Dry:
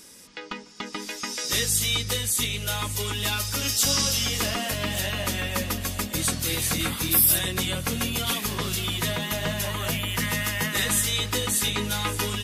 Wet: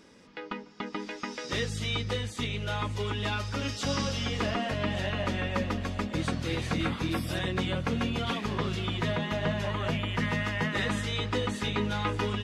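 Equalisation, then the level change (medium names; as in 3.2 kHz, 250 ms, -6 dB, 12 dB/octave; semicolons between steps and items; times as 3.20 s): tape spacing loss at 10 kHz 30 dB; bass shelf 84 Hz -6.5 dB; +2.0 dB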